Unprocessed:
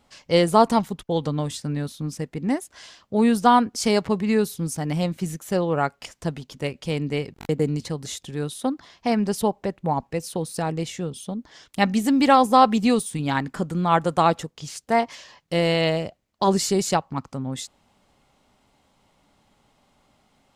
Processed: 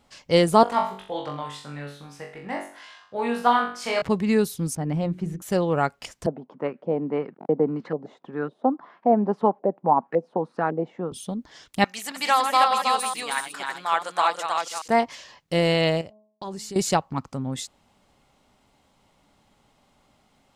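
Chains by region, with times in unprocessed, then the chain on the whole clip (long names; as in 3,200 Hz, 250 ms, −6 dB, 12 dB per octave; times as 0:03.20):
0:00.63–0:04.02: three-way crossover with the lows and the highs turned down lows −18 dB, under 580 Hz, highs −15 dB, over 3,100 Hz + flutter between parallel walls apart 3.6 metres, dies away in 0.46 s
0:04.75–0:05.42: low-pass filter 1,000 Hz 6 dB per octave + hum removal 45.34 Hz, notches 9
0:06.26–0:11.12: high-pass filter 190 Hz 24 dB per octave + auto-filter low-pass saw up 1.8 Hz 580–1,600 Hz
0:11.84–0:14.88: delay that plays each chunk backwards 140 ms, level −7.5 dB + high-pass filter 1,000 Hz + single-tap delay 318 ms −3.5 dB
0:16.01–0:16.76: downward expander −37 dBFS + hum removal 212.9 Hz, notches 5 + downward compressor 2 to 1, threshold −44 dBFS
whole clip: no processing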